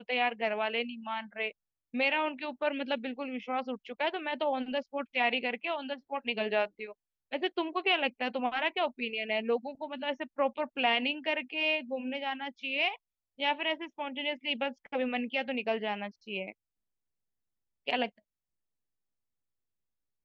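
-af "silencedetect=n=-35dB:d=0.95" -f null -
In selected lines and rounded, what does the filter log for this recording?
silence_start: 16.50
silence_end: 17.87 | silence_duration: 1.37
silence_start: 18.07
silence_end: 20.25 | silence_duration: 2.18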